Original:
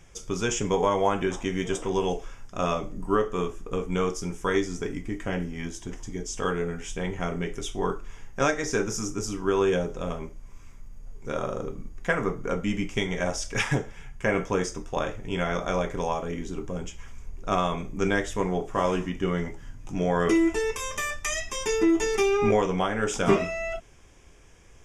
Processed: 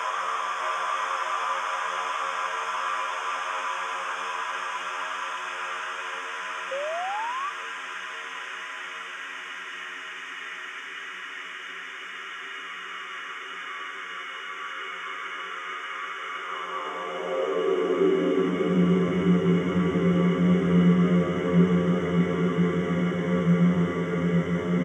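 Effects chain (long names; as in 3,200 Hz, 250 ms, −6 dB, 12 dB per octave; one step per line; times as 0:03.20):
extreme stretch with random phases 45×, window 0.50 s, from 0:18.87
on a send: single-tap delay 597 ms −6 dB
on the sum: high-pass filter sweep 1,400 Hz → 140 Hz, 0:16.32–0:19.11
sound drawn into the spectrogram rise, 0:06.71–0:07.50, 520–1,200 Hz −31 dBFS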